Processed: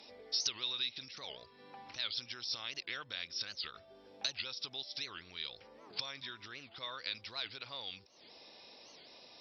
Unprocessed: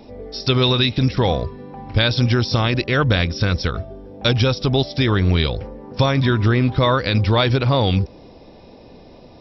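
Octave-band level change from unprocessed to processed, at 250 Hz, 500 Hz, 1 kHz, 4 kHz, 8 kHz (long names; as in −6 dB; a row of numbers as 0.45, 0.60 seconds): −38.0 dB, −32.5 dB, −26.5 dB, −14.5 dB, can't be measured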